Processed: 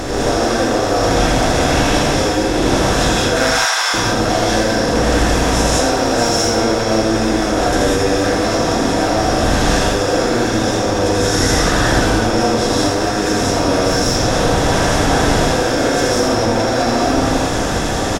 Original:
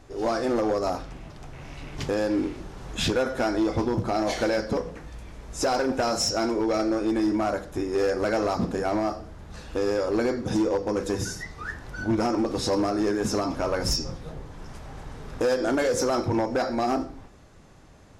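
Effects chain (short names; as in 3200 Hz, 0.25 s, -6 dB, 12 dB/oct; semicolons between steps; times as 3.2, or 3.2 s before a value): per-bin compression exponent 0.4; 3.36–3.94 HPF 1000 Hz 24 dB/oct; in parallel at +2.5 dB: negative-ratio compressor -24 dBFS, ratio -0.5; on the sum: echo 81 ms -5.5 dB; non-linear reverb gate 0.22 s rising, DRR -4.5 dB; gain -5.5 dB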